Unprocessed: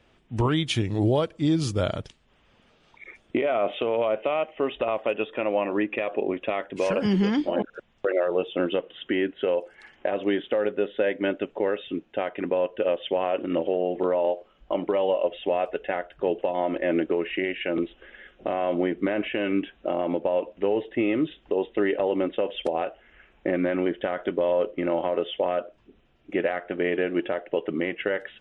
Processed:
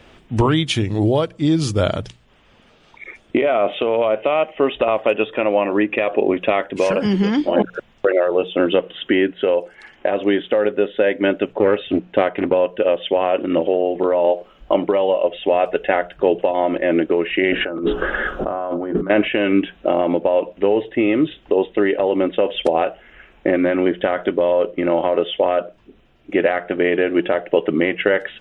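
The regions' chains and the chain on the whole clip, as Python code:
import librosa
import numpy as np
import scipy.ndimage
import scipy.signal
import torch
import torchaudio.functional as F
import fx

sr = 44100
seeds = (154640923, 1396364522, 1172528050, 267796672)

y = fx.chain(x, sr, fx.high_shelf(hz=5400.0, db=-12.0),
    fx.doppler_dist(depth_ms=0.23), at=(11.53, 12.54))
y = fx.chain(y, sr, fx.high_shelf_res(hz=1700.0, db=-8.0, q=3.0),
    fx.hum_notches(base_hz=60, count=9),
    fx.over_compress(threshold_db=-38.0, ratio=-1.0), at=(17.52, 19.1))
y = fx.hum_notches(y, sr, base_hz=60, count=3)
y = fx.rider(y, sr, range_db=10, speed_s=0.5)
y = y * 10.0 ** (8.0 / 20.0)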